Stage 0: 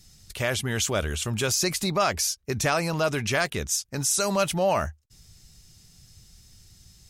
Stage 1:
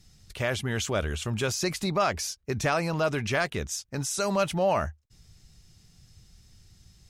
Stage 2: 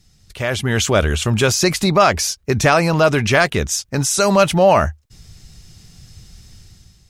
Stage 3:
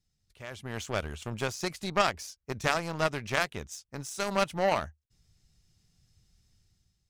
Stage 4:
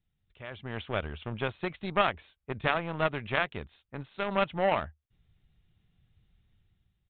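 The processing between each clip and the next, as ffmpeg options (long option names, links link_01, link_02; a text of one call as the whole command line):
ffmpeg -i in.wav -af "aemphasis=mode=reproduction:type=cd,volume=-1.5dB" out.wav
ffmpeg -i in.wav -af "dynaudnorm=framelen=160:gausssize=7:maxgain=10.5dB,volume=2.5dB" out.wav
ffmpeg -i in.wav -af "aeval=exprs='0.891*(cos(1*acos(clip(val(0)/0.891,-1,1)))-cos(1*PI/2))+0.0398*(cos(2*acos(clip(val(0)/0.891,-1,1)))-cos(2*PI/2))+0.251*(cos(3*acos(clip(val(0)/0.891,-1,1)))-cos(3*PI/2))+0.0126*(cos(4*acos(clip(val(0)/0.891,-1,1)))-cos(4*PI/2))':channel_layout=same,volume=-8dB" out.wav
ffmpeg -i in.wav -af "aresample=8000,aresample=44100" out.wav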